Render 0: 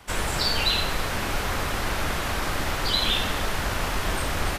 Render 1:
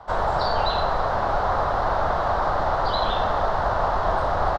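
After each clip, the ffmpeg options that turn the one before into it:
-af "firequalizer=gain_entry='entry(140,0);entry(260,-5);entry(670,13);entry(1200,7);entry(2400,-16);entry(3900,-6);entry(9100,-29)':delay=0.05:min_phase=1"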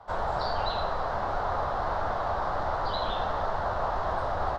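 -af "flanger=delay=8.1:depth=9.1:regen=-41:speed=1.4:shape=triangular,volume=-3dB"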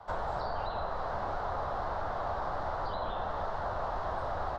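-filter_complex "[0:a]acrossover=split=850|2000[a][b][c];[a]acompressor=threshold=-34dB:ratio=4[d];[b]acompressor=threshold=-40dB:ratio=4[e];[c]acompressor=threshold=-55dB:ratio=4[f];[d][e][f]amix=inputs=3:normalize=0"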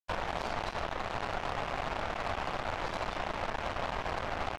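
-af "acrusher=bits=4:mix=0:aa=0.5"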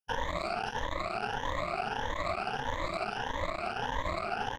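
-af "afftfilt=real='re*pow(10,21/40*sin(2*PI*(1.1*log(max(b,1)*sr/1024/100)/log(2)-(1.6)*(pts-256)/sr)))':imag='im*pow(10,21/40*sin(2*PI*(1.1*log(max(b,1)*sr/1024/100)/log(2)-(1.6)*(pts-256)/sr)))':win_size=1024:overlap=0.75,volume=-3.5dB"

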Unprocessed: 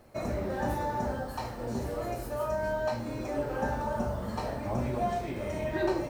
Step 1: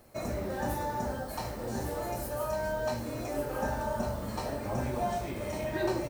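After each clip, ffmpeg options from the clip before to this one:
-filter_complex "[0:a]highshelf=f=5.7k:g=10.5,asplit=2[a][b];[b]aecho=0:1:1152:0.398[c];[a][c]amix=inputs=2:normalize=0,volume=-2dB"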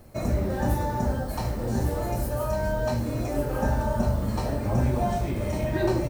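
-af "lowshelf=f=240:g=11.5,volume=2.5dB"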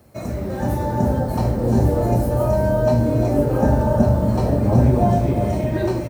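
-filter_complex "[0:a]highpass=72,acrossover=split=810|2600[a][b][c];[a]dynaudnorm=f=340:g=5:m=10.5dB[d];[d][b][c]amix=inputs=3:normalize=0,aecho=1:1:351:0.376"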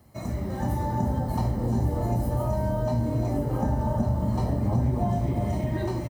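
-af "acompressor=threshold=-18dB:ratio=3,bandreject=f=2.6k:w=24,aecho=1:1:1:0.41,volume=-5.5dB"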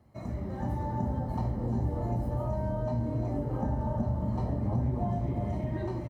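-af "lowpass=f=2k:p=1,volume=-5dB"

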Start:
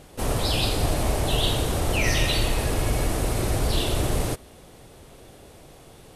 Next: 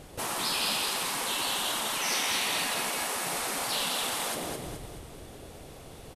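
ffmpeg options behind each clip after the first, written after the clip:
-af "aecho=1:1:211|422|633|844|1055:0.531|0.234|0.103|0.0452|0.0199,afftfilt=real='re*lt(hypot(re,im),0.126)':imag='im*lt(hypot(re,im),0.126)':win_size=1024:overlap=0.75"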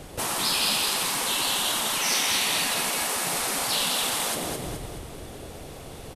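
-filter_complex "[0:a]acrossover=split=220|3000[a][b][c];[b]acompressor=threshold=-40dB:ratio=1.5[d];[a][d][c]amix=inputs=3:normalize=0,volume=6dB"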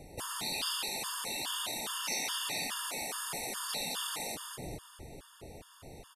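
-af "afftfilt=real='re*gt(sin(2*PI*2.4*pts/sr)*(1-2*mod(floor(b*sr/1024/910),2)),0)':imag='im*gt(sin(2*PI*2.4*pts/sr)*(1-2*mod(floor(b*sr/1024/910),2)),0)':win_size=1024:overlap=0.75,volume=-8dB"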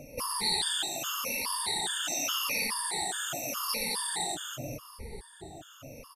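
-af "afftfilt=real='re*pow(10,21/40*sin(2*PI*(0.89*log(max(b,1)*sr/1024/100)/log(2)-(-0.85)*(pts-256)/sr)))':imag='im*pow(10,21/40*sin(2*PI*(0.89*log(max(b,1)*sr/1024/100)/log(2)-(-0.85)*(pts-256)/sr)))':win_size=1024:overlap=0.75"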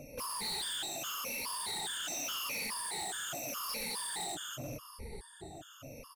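-af "asoftclip=type=tanh:threshold=-32.5dB,volume=-2dB"

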